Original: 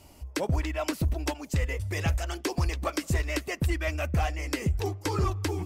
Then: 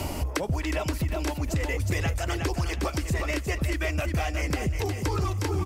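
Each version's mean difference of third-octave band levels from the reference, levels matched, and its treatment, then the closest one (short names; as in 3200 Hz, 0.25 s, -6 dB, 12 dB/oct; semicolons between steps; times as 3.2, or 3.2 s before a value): 5.5 dB: limiter -23 dBFS, peak gain reduction 4 dB; on a send: feedback echo 0.361 s, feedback 22%, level -7 dB; on the sum: three-band squash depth 100%; gain +2.5 dB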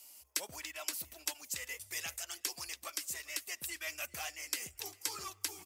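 11.0 dB: differentiator; vocal rider 0.5 s; on a send: feedback echo 0.398 s, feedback 27%, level -23 dB; on the sum: gain +2.5 dB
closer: first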